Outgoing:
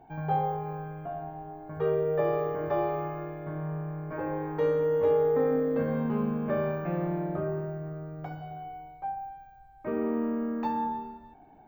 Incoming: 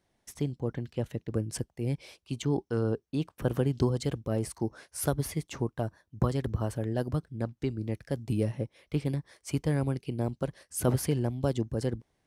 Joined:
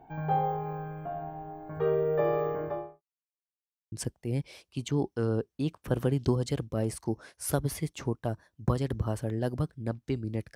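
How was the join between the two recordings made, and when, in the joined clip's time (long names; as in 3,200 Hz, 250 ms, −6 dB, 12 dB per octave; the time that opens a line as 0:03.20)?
outgoing
0:02.47–0:03.02: fade out and dull
0:03.02–0:03.92: silence
0:03.92: continue with incoming from 0:01.46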